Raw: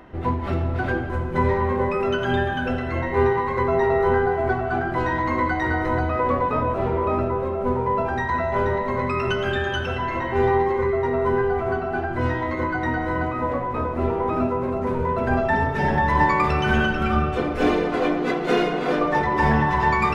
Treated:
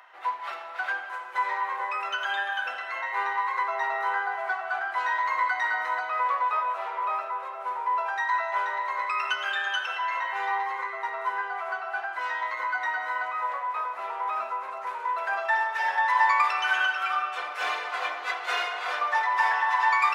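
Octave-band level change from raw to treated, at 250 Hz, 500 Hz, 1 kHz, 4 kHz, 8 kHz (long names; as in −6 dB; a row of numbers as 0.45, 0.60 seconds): below −35 dB, −18.0 dB, −2.5 dB, 0.0 dB, can't be measured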